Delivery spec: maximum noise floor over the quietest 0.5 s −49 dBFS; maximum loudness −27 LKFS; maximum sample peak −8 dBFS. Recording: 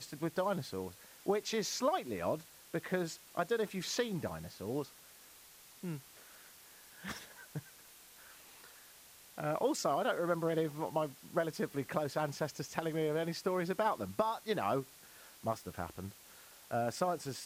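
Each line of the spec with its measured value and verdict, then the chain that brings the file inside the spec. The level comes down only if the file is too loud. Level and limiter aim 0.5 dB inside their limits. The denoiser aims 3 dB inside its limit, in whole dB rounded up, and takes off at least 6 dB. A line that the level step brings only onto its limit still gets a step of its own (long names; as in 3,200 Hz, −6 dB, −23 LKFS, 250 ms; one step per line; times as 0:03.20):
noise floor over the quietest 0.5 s −58 dBFS: in spec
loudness −37.0 LKFS: in spec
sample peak −19.5 dBFS: in spec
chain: no processing needed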